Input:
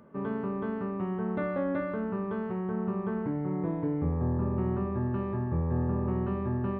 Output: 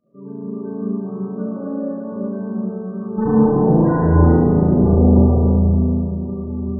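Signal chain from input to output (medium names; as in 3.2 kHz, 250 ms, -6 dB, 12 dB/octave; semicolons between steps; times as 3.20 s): low-pass 1.5 kHz 6 dB/octave; peak limiter -26.5 dBFS, peak gain reduction 7.5 dB; level rider gain up to 5.5 dB; 3.18–5.24 s: fuzz box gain 58 dB, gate -58 dBFS; flange 0.68 Hz, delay 3.1 ms, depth 4.3 ms, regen +87%; bit crusher 10-bit; loudest bins only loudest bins 16; volume shaper 121 bpm, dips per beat 1, -19 dB, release 97 ms; flutter echo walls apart 6.2 m, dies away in 0.92 s; reverberation RT60 2.5 s, pre-delay 72 ms, DRR -4.5 dB; trim -2 dB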